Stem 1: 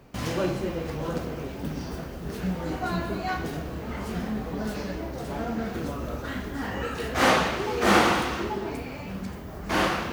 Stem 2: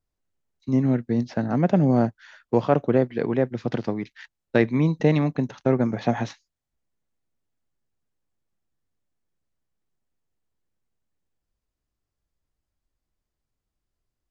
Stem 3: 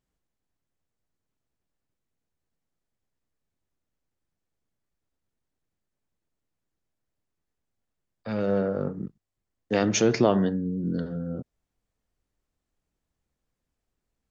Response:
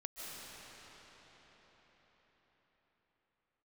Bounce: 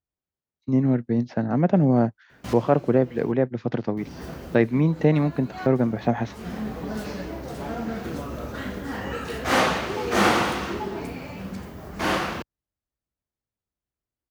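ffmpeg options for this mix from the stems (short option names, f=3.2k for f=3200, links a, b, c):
-filter_complex "[0:a]adelay=2300,volume=0dB,asplit=3[a][b][c];[a]atrim=end=3.32,asetpts=PTS-STARTPTS,afade=t=out:st=3.316:d=0.004:c=hsin[d];[b]atrim=start=3.32:end=3.97,asetpts=PTS-STARTPTS,volume=0[e];[c]atrim=start=3.97,asetpts=PTS-STARTPTS,afade=t=in:d=0.004:c=hsin[f];[d][e][f]concat=n=3:v=0:a=1[g];[1:a]agate=range=-7dB:threshold=-40dB:ratio=16:detection=peak,highshelf=f=3.7k:g=-9.5,volume=0.5dB,asplit=2[h][i];[2:a]adelay=200,volume=-16dB[j];[i]apad=whole_len=547875[k];[g][k]sidechaincompress=threshold=-32dB:ratio=4:attack=8.5:release=372[l];[l][h][j]amix=inputs=3:normalize=0,highpass=56"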